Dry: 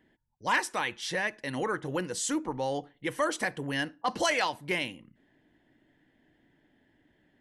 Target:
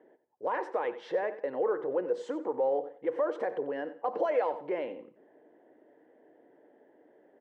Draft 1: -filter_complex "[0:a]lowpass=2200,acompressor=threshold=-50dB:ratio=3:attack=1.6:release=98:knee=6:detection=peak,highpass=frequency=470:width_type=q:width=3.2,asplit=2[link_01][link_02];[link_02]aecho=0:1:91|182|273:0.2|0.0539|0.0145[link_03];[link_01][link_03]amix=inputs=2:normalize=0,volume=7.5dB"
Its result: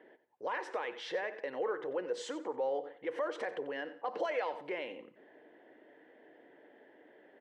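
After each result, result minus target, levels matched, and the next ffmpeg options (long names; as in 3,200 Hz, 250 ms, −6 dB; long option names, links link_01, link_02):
downward compressor: peak gain reduction +7.5 dB; 2,000 Hz band +7.0 dB
-filter_complex "[0:a]lowpass=2200,acompressor=threshold=-41.5dB:ratio=3:attack=1.6:release=98:knee=6:detection=peak,highpass=frequency=470:width_type=q:width=3.2,asplit=2[link_01][link_02];[link_02]aecho=0:1:91|182|273:0.2|0.0539|0.0145[link_03];[link_01][link_03]amix=inputs=2:normalize=0,volume=7.5dB"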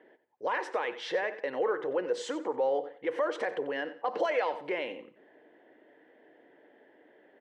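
2,000 Hz band +7.0 dB
-filter_complex "[0:a]lowpass=970,acompressor=threshold=-41.5dB:ratio=3:attack=1.6:release=98:knee=6:detection=peak,highpass=frequency=470:width_type=q:width=3.2,asplit=2[link_01][link_02];[link_02]aecho=0:1:91|182|273:0.2|0.0539|0.0145[link_03];[link_01][link_03]amix=inputs=2:normalize=0,volume=7.5dB"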